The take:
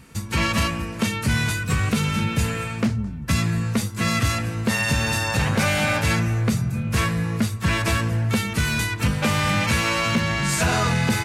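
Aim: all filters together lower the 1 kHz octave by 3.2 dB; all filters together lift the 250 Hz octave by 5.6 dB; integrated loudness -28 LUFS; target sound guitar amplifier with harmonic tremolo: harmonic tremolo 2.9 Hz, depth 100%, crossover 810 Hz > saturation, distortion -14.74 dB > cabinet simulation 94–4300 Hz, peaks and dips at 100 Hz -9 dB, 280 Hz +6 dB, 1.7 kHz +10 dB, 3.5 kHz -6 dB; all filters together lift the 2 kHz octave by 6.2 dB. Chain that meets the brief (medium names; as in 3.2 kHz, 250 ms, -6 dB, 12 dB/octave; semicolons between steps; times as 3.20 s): peaking EQ 250 Hz +6 dB; peaking EQ 1 kHz -7.5 dB; peaking EQ 2 kHz +3.5 dB; harmonic tremolo 2.9 Hz, depth 100%, crossover 810 Hz; saturation -17 dBFS; cabinet simulation 94–4300 Hz, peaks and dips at 100 Hz -9 dB, 280 Hz +6 dB, 1.7 kHz +10 dB, 3.5 kHz -6 dB; trim -2.5 dB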